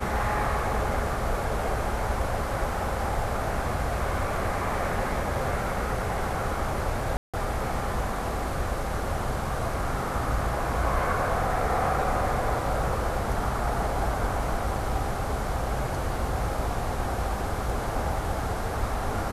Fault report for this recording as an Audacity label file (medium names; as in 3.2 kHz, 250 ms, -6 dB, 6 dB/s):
7.170000	7.340000	dropout 166 ms